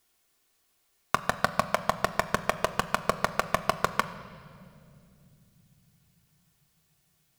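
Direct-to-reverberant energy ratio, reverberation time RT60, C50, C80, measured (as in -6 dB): 6.0 dB, not exponential, 13.5 dB, 14.0 dB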